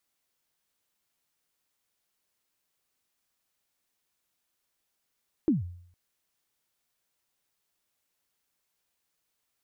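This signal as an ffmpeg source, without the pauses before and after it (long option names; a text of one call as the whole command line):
ffmpeg -f lavfi -i "aevalsrc='0.133*pow(10,-3*t/0.63)*sin(2*PI*(350*0.149/log(88/350)*(exp(log(88/350)*min(t,0.149)/0.149)-1)+88*max(t-0.149,0)))':duration=0.46:sample_rate=44100" out.wav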